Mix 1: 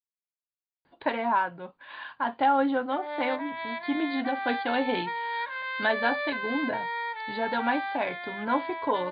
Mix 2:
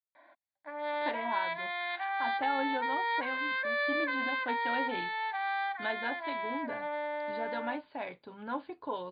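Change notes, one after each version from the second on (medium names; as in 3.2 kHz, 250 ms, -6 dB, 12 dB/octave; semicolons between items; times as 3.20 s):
speech -9.5 dB; background: entry -2.25 s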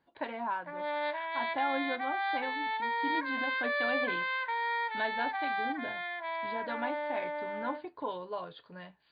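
speech: entry -0.85 s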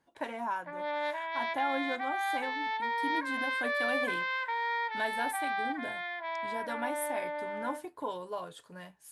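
master: remove brick-wall FIR low-pass 4.8 kHz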